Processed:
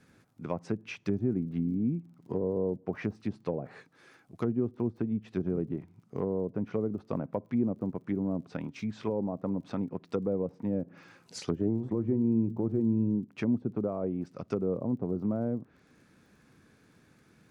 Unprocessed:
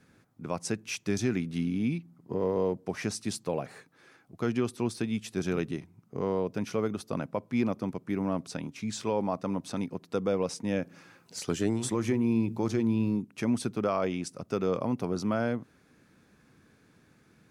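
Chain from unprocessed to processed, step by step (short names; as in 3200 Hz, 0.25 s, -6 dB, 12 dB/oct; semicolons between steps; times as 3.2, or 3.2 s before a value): treble ducked by the level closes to 490 Hz, closed at -26.5 dBFS; crackle 41/s -57 dBFS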